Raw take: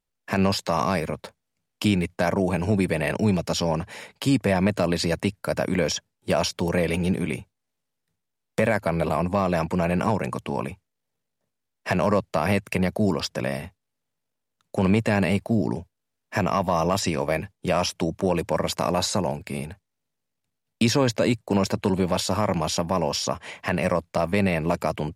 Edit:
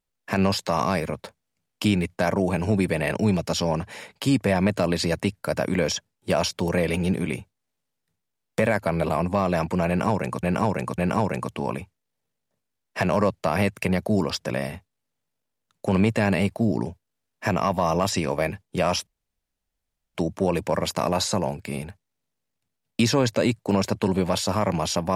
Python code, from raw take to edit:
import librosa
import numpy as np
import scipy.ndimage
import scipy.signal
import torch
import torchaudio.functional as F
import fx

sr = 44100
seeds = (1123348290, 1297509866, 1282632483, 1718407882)

y = fx.edit(x, sr, fx.repeat(start_s=9.88, length_s=0.55, count=3),
    fx.insert_room_tone(at_s=17.97, length_s=1.08), tone=tone)